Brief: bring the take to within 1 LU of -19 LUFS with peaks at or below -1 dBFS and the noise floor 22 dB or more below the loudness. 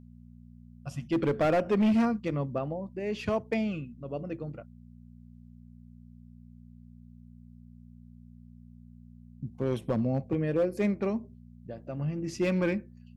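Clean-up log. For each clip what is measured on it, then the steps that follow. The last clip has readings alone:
clipped 0.9%; flat tops at -20.5 dBFS; hum 60 Hz; harmonics up to 240 Hz; hum level -48 dBFS; loudness -30.0 LUFS; peak -20.5 dBFS; loudness target -19.0 LUFS
-> clip repair -20.5 dBFS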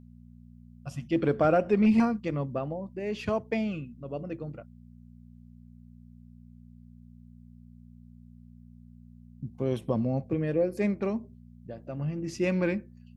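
clipped 0.0%; hum 60 Hz; harmonics up to 180 Hz; hum level -49 dBFS
-> de-hum 60 Hz, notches 3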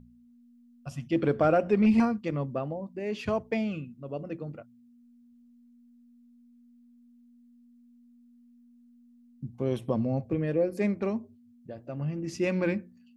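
hum none; loudness -29.0 LUFS; peak -13.0 dBFS; loudness target -19.0 LUFS
-> gain +10 dB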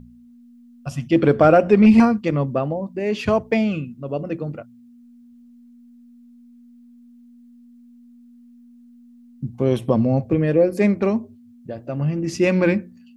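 loudness -19.0 LUFS; peak -3.0 dBFS; noise floor -48 dBFS

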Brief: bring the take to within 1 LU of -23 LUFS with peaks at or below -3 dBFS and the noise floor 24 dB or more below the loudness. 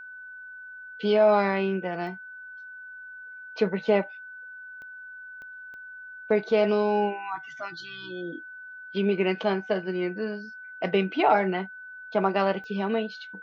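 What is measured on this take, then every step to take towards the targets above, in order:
clicks 5; steady tone 1500 Hz; tone level -40 dBFS; loudness -26.5 LUFS; peak -9.5 dBFS; loudness target -23.0 LUFS
-> de-click; notch 1500 Hz, Q 30; gain +3.5 dB

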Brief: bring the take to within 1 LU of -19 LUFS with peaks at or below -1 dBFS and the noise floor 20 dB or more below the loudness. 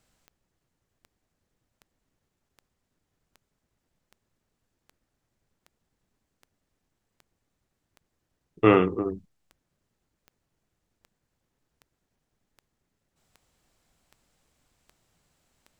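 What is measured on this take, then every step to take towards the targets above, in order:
clicks 21; loudness -23.0 LUFS; peak -4.0 dBFS; loudness target -19.0 LUFS
-> de-click; gain +4 dB; limiter -1 dBFS

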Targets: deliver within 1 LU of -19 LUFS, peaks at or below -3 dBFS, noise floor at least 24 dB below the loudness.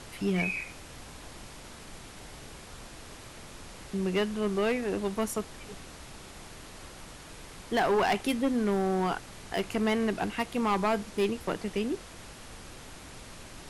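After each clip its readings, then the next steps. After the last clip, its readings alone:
clipped 0.9%; flat tops at -21.0 dBFS; noise floor -47 dBFS; noise floor target -54 dBFS; loudness -30.0 LUFS; peak -21.0 dBFS; loudness target -19.0 LUFS
-> clip repair -21 dBFS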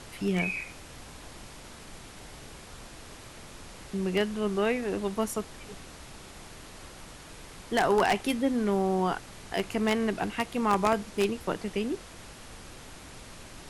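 clipped 0.0%; noise floor -47 dBFS; noise floor target -53 dBFS
-> noise print and reduce 6 dB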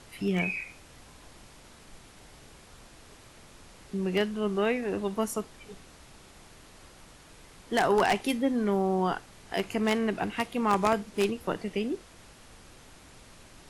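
noise floor -53 dBFS; loudness -29.0 LUFS; peak -12.0 dBFS; loudness target -19.0 LUFS
-> gain +10 dB; limiter -3 dBFS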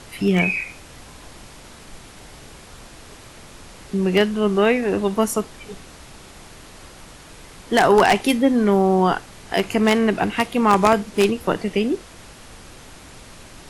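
loudness -19.0 LUFS; peak -3.0 dBFS; noise floor -43 dBFS

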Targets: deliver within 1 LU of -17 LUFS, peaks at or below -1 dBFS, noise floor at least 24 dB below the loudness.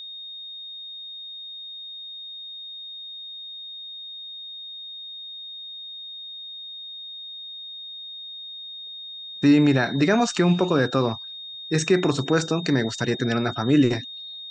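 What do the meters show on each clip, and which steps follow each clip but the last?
steady tone 3700 Hz; tone level -35 dBFS; loudness -26.0 LUFS; peak -7.0 dBFS; loudness target -17.0 LUFS
-> notch 3700 Hz, Q 30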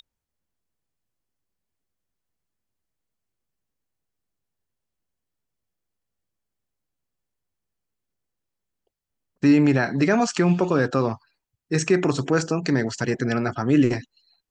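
steady tone none; loudness -21.5 LUFS; peak -7.5 dBFS; loudness target -17.0 LUFS
-> gain +4.5 dB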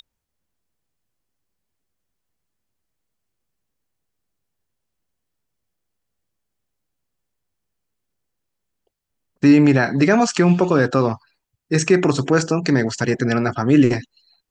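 loudness -17.0 LUFS; peak -3.0 dBFS; noise floor -79 dBFS

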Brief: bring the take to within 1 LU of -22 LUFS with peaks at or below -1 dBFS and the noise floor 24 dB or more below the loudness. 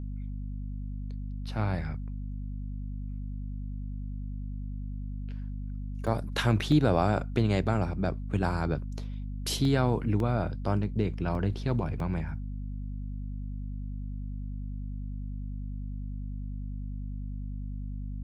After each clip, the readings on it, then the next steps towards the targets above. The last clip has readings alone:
dropouts 6; longest dropout 1.6 ms; hum 50 Hz; harmonics up to 250 Hz; hum level -33 dBFS; loudness -32.5 LUFS; peak -10.5 dBFS; loudness target -22.0 LUFS
-> interpolate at 6.07/6.72/9.65/10.2/11.35/12, 1.6 ms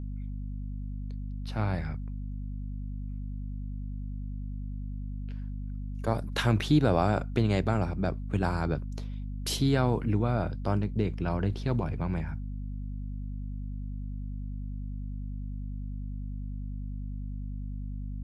dropouts 0; hum 50 Hz; harmonics up to 250 Hz; hum level -33 dBFS
-> de-hum 50 Hz, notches 5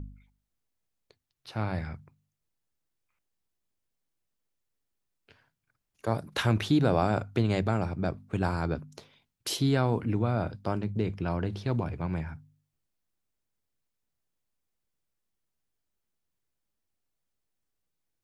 hum none; loudness -29.5 LUFS; peak -11.0 dBFS; loudness target -22.0 LUFS
-> gain +7.5 dB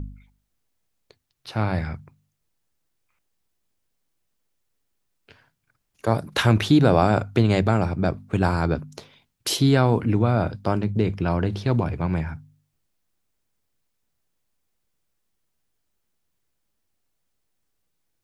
loudness -22.0 LUFS; peak -3.5 dBFS; noise floor -75 dBFS

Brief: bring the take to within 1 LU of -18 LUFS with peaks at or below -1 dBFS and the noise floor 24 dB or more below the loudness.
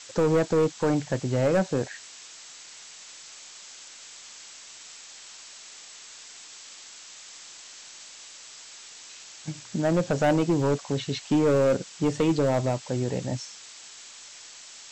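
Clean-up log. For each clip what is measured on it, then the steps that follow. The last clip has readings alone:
clipped 1.3%; flat tops at -17.0 dBFS; noise floor -46 dBFS; noise floor target -50 dBFS; loudness -25.5 LUFS; peak -17.0 dBFS; loudness target -18.0 LUFS
-> clip repair -17 dBFS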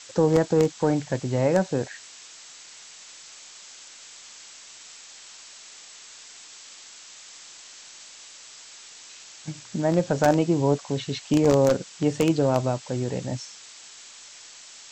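clipped 0.0%; noise floor -46 dBFS; noise floor target -48 dBFS
-> noise print and reduce 6 dB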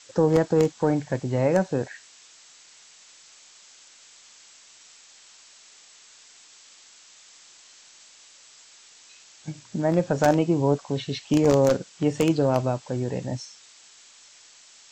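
noise floor -52 dBFS; loudness -23.5 LUFS; peak -8.0 dBFS; loudness target -18.0 LUFS
-> gain +5.5 dB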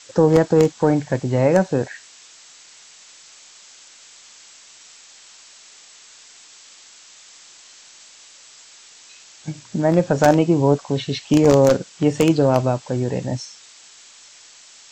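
loudness -18.0 LUFS; peak -2.5 dBFS; noise floor -47 dBFS

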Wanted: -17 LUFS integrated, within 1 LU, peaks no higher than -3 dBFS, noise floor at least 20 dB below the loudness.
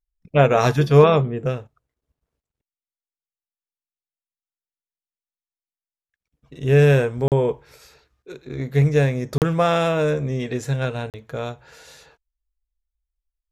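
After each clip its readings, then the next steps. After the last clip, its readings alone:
dropouts 3; longest dropout 38 ms; loudness -19.0 LUFS; peak -2.0 dBFS; loudness target -17.0 LUFS
-> interpolate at 7.28/9.38/11.1, 38 ms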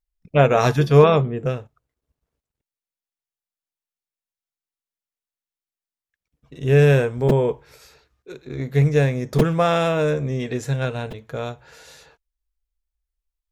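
dropouts 0; loudness -19.0 LUFS; peak -2.0 dBFS; loudness target -17.0 LUFS
-> gain +2 dB; limiter -3 dBFS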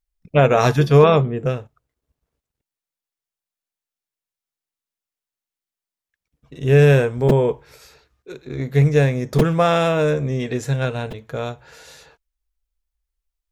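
loudness -17.5 LUFS; peak -3.0 dBFS; noise floor -90 dBFS

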